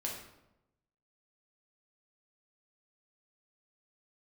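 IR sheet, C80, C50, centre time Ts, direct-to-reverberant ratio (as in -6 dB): 6.5 dB, 4.0 dB, 41 ms, -2.5 dB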